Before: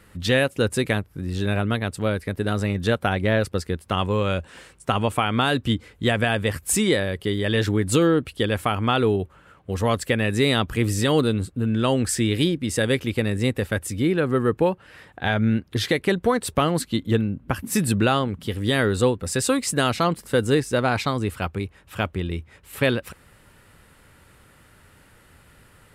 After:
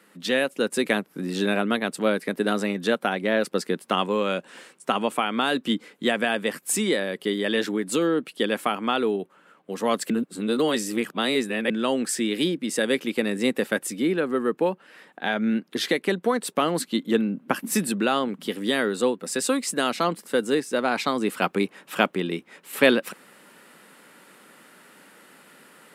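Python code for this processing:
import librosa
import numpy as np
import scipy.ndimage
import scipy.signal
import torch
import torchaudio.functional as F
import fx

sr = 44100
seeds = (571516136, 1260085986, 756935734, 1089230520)

y = fx.edit(x, sr, fx.reverse_span(start_s=10.1, length_s=1.6), tone=tone)
y = scipy.signal.sosfilt(scipy.signal.butter(6, 190.0, 'highpass', fs=sr, output='sos'), y)
y = fx.rider(y, sr, range_db=10, speed_s=0.5)
y = y * librosa.db_to_amplitude(-1.0)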